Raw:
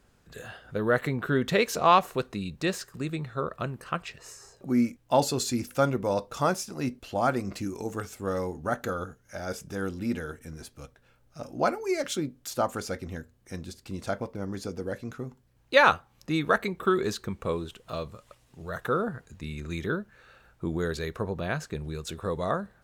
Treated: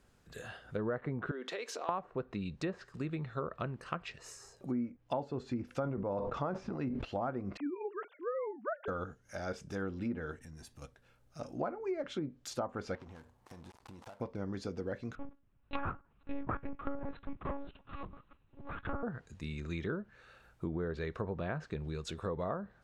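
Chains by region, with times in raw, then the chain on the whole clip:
0:01.31–0:01.89: Butterworth high-pass 280 Hz + downward compressor 10 to 1, threshold −32 dBFS
0:05.79–0:07.05: high-frequency loss of the air 57 metres + level that may fall only so fast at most 44 dB per second
0:07.57–0:08.88: three sine waves on the formant tracks + low-shelf EQ 240 Hz −6.5 dB
0:10.40–0:10.82: downward compressor 3 to 1, threshold −46 dBFS + comb filter 1.1 ms, depth 42%
0:12.95–0:14.20: gap after every zero crossing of 0.2 ms + parametric band 900 Hz +14.5 dB 1 octave + downward compressor 12 to 1, threshold −43 dBFS
0:15.15–0:19.03: lower of the sound and its delayed copy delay 0.75 ms + high-shelf EQ 2,800 Hz −10.5 dB + one-pitch LPC vocoder at 8 kHz 280 Hz
whole clip: treble cut that deepens with the level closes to 1,300 Hz, closed at −25 dBFS; downward compressor 6 to 1, threshold −28 dBFS; level −4 dB

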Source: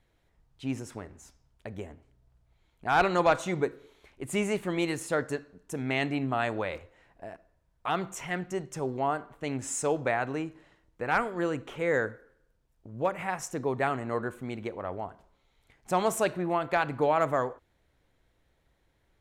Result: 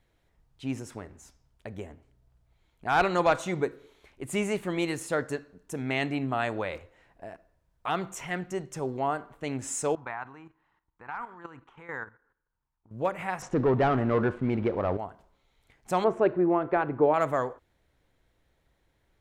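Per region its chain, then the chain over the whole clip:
0:09.95–0:12.91: low-pass filter 1,100 Hz 6 dB per octave + low shelf with overshoot 730 Hz −8 dB, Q 3 + output level in coarse steps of 12 dB
0:13.42–0:14.97: leveller curve on the samples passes 3 + head-to-tape spacing loss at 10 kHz 30 dB
0:16.04–0:17.14: low-pass filter 1,600 Hz + parametric band 370 Hz +10 dB 0.56 octaves
whole clip: no processing

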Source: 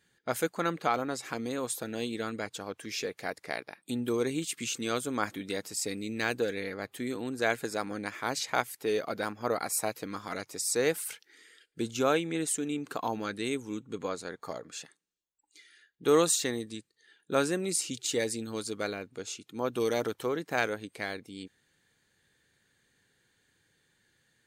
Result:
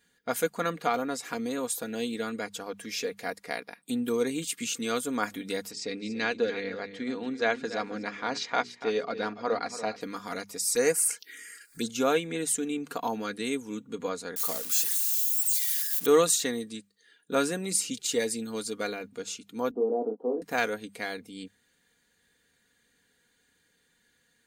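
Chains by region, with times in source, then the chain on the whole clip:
0:05.71–0:10.01: low-pass filter 5,500 Hz 24 dB per octave + mains-hum notches 60/120/180/240/300/360/420 Hz + single-tap delay 286 ms −13 dB
0:10.75–0:11.88: high-shelf EQ 2,300 Hz +11.5 dB + upward compression, threshold −36 dBFS + phaser swept by the level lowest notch 440 Hz, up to 3,500 Hz, full sweep at −25 dBFS
0:14.36–0:16.06: spike at every zero crossing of −32 dBFS + high-shelf EQ 3,600 Hz +8.5 dB
0:19.71–0:20.42: elliptic band-pass filter 230–800 Hz, stop band 50 dB + double-tracking delay 28 ms −5.5 dB
whole clip: high-shelf EQ 11,000 Hz +6 dB; mains-hum notches 50/100/150/200 Hz; comb filter 4.2 ms, depth 54%

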